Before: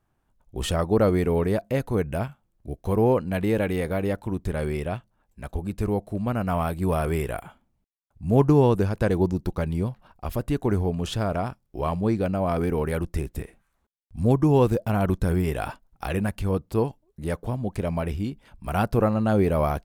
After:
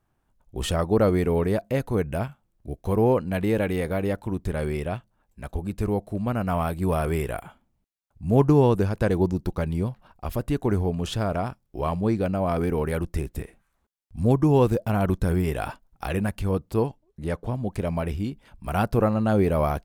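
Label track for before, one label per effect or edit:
16.870000	17.550000	high-shelf EQ 9,600 Hz −11 dB

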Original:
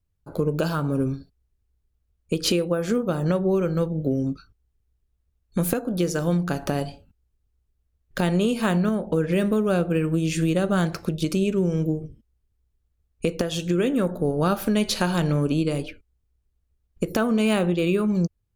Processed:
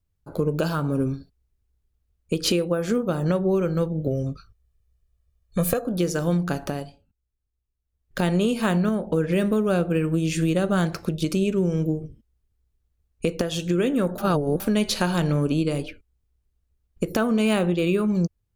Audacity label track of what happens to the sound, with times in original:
4.070000	5.870000	comb filter 1.7 ms
6.530000	8.220000	duck −10.5 dB, fades 0.39 s
14.180000	14.600000	reverse

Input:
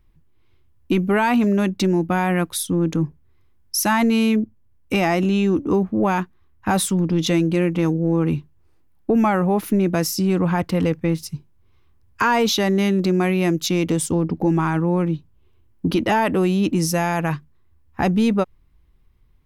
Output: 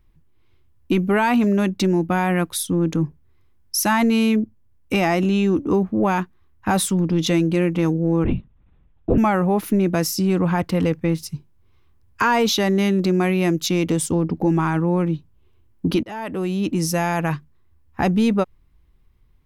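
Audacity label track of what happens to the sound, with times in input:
8.240000	9.180000	linear-prediction vocoder at 8 kHz whisper
16.030000	17.290000	fade in equal-power, from −21.5 dB

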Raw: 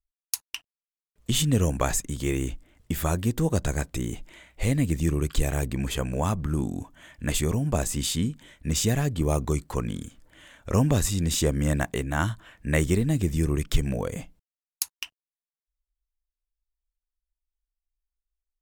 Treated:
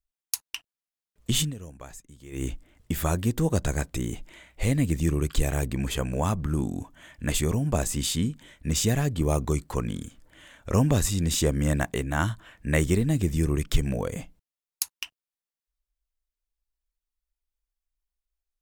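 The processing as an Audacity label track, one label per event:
1.400000	2.450000	duck −18.5 dB, fades 0.14 s

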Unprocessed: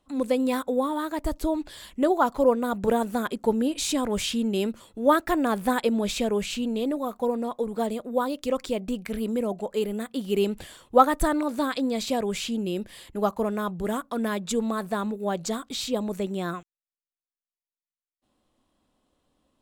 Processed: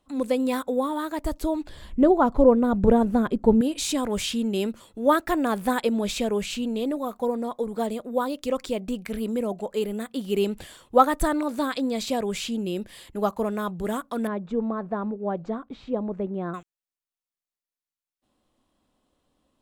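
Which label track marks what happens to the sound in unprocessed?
1.690000	3.610000	spectral tilt −3.5 dB per octave
7.200000	7.770000	notch filter 2,700 Hz, Q 6
14.270000	16.540000	low-pass filter 1,200 Hz

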